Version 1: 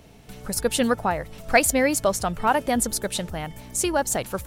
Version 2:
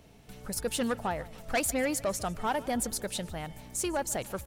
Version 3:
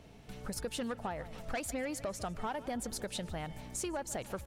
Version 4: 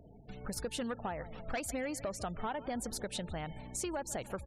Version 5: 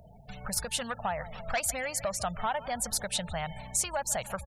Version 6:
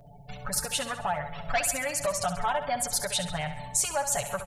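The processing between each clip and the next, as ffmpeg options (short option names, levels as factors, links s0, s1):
-af "asoftclip=type=tanh:threshold=0.158,aecho=1:1:148|296|444|592:0.0944|0.0491|0.0255|0.0133,volume=0.473"
-af "highshelf=f=9000:g=-11,acompressor=threshold=0.0158:ratio=6,volume=1.12"
-af "afftfilt=real='re*gte(hypot(re,im),0.00251)':imag='im*gte(hypot(re,im),0.00251)':win_size=1024:overlap=0.75"
-af "firequalizer=gain_entry='entry(180,0);entry(310,-17);entry(620,4);entry(11000,9)':delay=0.05:min_phase=1,volume=1.5"
-filter_complex "[0:a]aecho=1:1:7:0.92,asplit=2[s0][s1];[s1]aecho=0:1:67|134|201|268|335|402:0.316|0.164|0.0855|0.0445|0.0231|0.012[s2];[s0][s2]amix=inputs=2:normalize=0"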